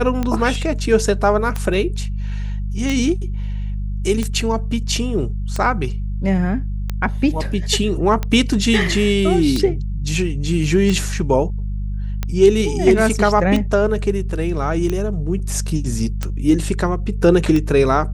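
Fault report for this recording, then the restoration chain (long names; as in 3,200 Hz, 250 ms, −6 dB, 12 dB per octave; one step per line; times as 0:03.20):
mains hum 50 Hz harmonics 4 −23 dBFS
scratch tick 45 rpm −9 dBFS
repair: click removal
hum removal 50 Hz, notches 4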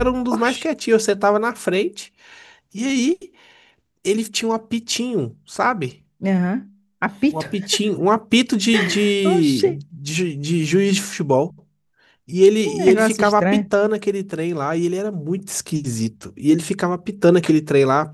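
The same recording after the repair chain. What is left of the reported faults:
none of them is left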